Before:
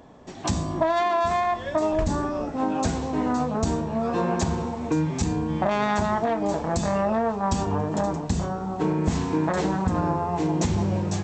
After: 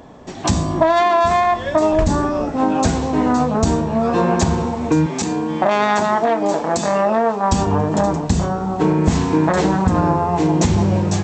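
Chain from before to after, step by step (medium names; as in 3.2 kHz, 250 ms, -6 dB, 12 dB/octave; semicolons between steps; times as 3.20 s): 5.06–7.52 s: high-pass 250 Hz 12 dB/octave; trim +8 dB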